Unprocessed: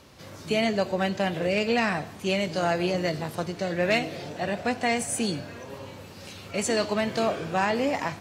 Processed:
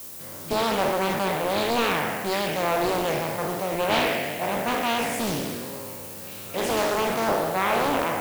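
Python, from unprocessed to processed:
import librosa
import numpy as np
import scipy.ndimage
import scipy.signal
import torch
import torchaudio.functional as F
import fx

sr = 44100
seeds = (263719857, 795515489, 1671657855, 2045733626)

y = fx.spec_trails(x, sr, decay_s=1.79)
y = fx.highpass(y, sr, hz=140.0, slope=6)
y = fx.high_shelf(y, sr, hz=3500.0, db=-10.0)
y = fx.dmg_noise_colour(y, sr, seeds[0], colour='violet', level_db=-37.0)
y = fx.doppler_dist(y, sr, depth_ms=0.69)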